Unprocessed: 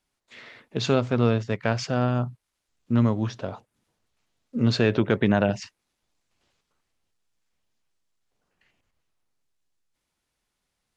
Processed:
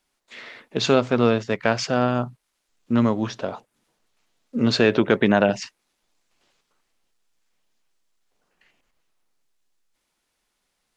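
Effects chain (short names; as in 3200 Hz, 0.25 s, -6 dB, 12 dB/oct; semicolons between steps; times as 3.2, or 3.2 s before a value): bell 82 Hz -14 dB 1.5 oct; gain +5.5 dB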